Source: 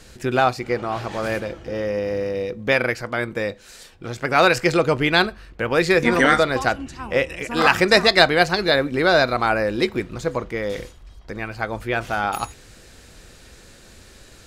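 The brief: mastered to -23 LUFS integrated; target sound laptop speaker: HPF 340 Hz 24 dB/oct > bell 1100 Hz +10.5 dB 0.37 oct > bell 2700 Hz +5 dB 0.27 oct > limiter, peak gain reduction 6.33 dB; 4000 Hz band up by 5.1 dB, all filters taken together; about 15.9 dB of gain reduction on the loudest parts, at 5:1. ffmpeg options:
-af "equalizer=f=4k:t=o:g=5,acompressor=threshold=-26dB:ratio=5,highpass=f=340:w=0.5412,highpass=f=340:w=1.3066,equalizer=f=1.1k:t=o:w=0.37:g=10.5,equalizer=f=2.7k:t=o:w=0.27:g=5,volume=7dB,alimiter=limit=-9dB:level=0:latency=1"

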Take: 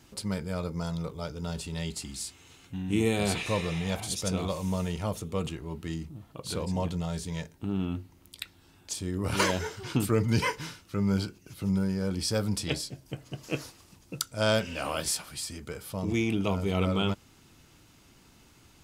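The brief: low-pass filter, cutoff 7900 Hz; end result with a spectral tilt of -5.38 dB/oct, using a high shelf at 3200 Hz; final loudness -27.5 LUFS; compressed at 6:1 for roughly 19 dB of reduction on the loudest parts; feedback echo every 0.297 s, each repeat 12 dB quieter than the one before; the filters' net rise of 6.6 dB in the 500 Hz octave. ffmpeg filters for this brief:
-af "lowpass=7.9k,equalizer=f=500:t=o:g=8,highshelf=f=3.2k:g=-5.5,acompressor=threshold=-38dB:ratio=6,aecho=1:1:297|594|891:0.251|0.0628|0.0157,volume=14.5dB"

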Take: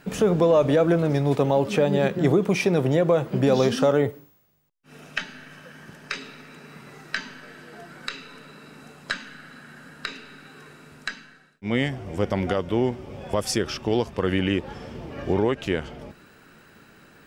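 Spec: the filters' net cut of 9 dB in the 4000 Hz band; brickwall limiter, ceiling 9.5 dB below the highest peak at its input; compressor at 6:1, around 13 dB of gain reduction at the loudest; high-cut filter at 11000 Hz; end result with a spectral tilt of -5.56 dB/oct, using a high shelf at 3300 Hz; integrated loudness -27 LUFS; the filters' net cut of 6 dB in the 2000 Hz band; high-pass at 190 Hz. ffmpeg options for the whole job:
-af "highpass=190,lowpass=11k,equalizer=f=2k:t=o:g=-4,highshelf=f=3.3k:g=-8.5,equalizer=f=4k:t=o:g=-4.5,acompressor=threshold=-30dB:ratio=6,volume=11.5dB,alimiter=limit=-14dB:level=0:latency=1"

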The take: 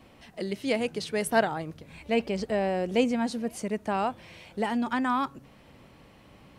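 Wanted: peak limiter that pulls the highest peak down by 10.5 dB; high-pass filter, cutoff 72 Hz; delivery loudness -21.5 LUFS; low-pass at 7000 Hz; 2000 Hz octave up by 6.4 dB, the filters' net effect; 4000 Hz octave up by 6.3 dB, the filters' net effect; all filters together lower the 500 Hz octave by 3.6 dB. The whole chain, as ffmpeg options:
-af "highpass=72,lowpass=7k,equalizer=f=500:t=o:g=-5,equalizer=f=2k:t=o:g=7,equalizer=f=4k:t=o:g=6,volume=9dB,alimiter=limit=-8.5dB:level=0:latency=1"

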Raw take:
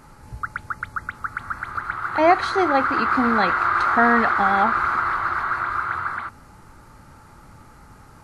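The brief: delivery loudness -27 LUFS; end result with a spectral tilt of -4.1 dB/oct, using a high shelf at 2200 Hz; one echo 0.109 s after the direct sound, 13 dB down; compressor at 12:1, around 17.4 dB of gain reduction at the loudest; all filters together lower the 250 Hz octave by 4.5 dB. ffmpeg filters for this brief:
-af "equalizer=f=250:t=o:g=-5.5,highshelf=f=2.2k:g=5.5,acompressor=threshold=-29dB:ratio=12,aecho=1:1:109:0.224,volume=5.5dB"

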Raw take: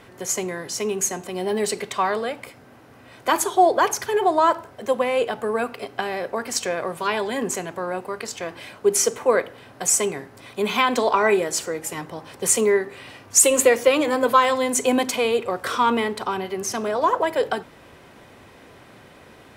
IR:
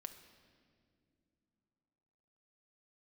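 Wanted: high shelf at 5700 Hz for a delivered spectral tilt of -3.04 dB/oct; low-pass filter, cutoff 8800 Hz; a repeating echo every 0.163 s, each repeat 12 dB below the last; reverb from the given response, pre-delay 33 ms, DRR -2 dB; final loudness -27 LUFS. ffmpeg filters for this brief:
-filter_complex "[0:a]lowpass=8.8k,highshelf=f=5.7k:g=-6.5,aecho=1:1:163|326|489:0.251|0.0628|0.0157,asplit=2[a][b];[1:a]atrim=start_sample=2205,adelay=33[c];[b][c]afir=irnorm=-1:irlink=0,volume=6.5dB[d];[a][d]amix=inputs=2:normalize=0,volume=-8.5dB"

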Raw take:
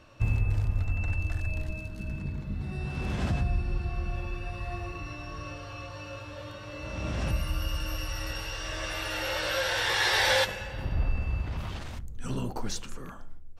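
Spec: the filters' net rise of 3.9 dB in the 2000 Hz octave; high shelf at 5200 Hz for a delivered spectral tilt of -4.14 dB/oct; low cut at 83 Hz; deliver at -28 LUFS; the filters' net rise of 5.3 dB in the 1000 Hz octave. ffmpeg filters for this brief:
-af "highpass=83,equalizer=f=1k:t=o:g=6,equalizer=f=2k:t=o:g=3.5,highshelf=f=5.2k:g=-4,volume=2.5dB"

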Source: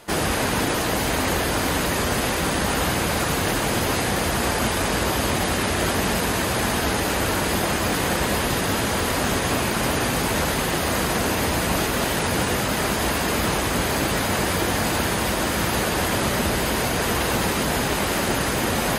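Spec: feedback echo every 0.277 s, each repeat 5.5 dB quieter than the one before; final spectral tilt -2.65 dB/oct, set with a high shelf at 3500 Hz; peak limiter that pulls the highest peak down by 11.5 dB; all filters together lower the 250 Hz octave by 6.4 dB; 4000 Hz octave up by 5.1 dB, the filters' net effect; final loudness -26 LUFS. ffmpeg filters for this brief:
-af "equalizer=f=250:t=o:g=-9,highshelf=f=3.5k:g=3,equalizer=f=4k:t=o:g=4.5,alimiter=limit=-19.5dB:level=0:latency=1,aecho=1:1:277|554|831|1108|1385|1662|1939:0.531|0.281|0.149|0.079|0.0419|0.0222|0.0118,volume=-0.5dB"

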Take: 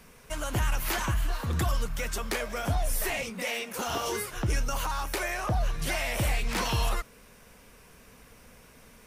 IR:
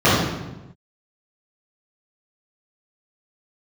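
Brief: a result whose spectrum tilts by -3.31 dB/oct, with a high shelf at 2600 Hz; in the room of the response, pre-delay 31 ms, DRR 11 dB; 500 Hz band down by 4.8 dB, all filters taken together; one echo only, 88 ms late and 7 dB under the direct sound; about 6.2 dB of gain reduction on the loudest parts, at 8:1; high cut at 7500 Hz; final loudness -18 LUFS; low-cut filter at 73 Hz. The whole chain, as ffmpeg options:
-filter_complex "[0:a]highpass=73,lowpass=7.5k,equalizer=f=500:t=o:g=-6.5,highshelf=f=2.6k:g=3,acompressor=threshold=-31dB:ratio=8,aecho=1:1:88:0.447,asplit=2[a][b];[1:a]atrim=start_sample=2205,adelay=31[c];[b][c]afir=irnorm=-1:irlink=0,volume=-37dB[d];[a][d]amix=inputs=2:normalize=0,volume=16dB"

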